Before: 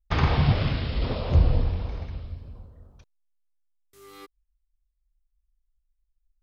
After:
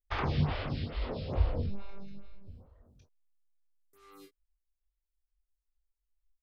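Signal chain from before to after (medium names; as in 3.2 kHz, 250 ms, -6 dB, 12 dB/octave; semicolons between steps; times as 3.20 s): 1.66–2.47 s: robot voice 198 Hz; early reflections 21 ms -5 dB, 34 ms -10 dB, 46 ms -11.5 dB; lamp-driven phase shifter 2.3 Hz; trim -6 dB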